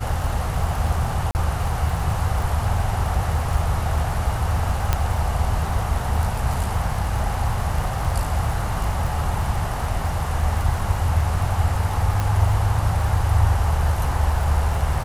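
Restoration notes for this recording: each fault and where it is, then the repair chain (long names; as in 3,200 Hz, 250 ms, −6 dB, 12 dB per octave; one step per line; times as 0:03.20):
surface crackle 43 per second −28 dBFS
0:01.31–0:01.35: drop-out 39 ms
0:04.93: click −5 dBFS
0:12.20: click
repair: click removal
repair the gap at 0:01.31, 39 ms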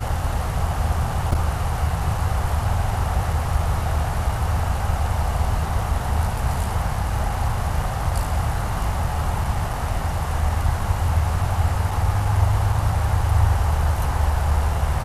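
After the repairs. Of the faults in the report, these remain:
none of them is left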